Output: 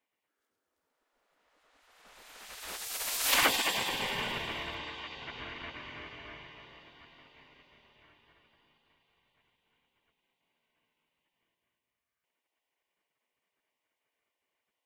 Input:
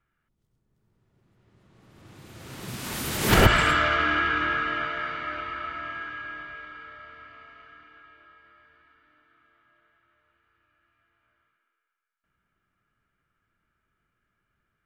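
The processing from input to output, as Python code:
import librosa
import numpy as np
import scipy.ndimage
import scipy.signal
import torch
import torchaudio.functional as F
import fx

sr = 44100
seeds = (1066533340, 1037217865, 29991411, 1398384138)

p1 = fx.highpass(x, sr, hz=740.0, slope=6, at=(4.38, 5.17))
p2 = p1 + fx.echo_feedback(p1, sr, ms=215, feedback_pct=51, wet_db=-7.5, dry=0)
y = fx.spec_gate(p2, sr, threshold_db=-15, keep='weak')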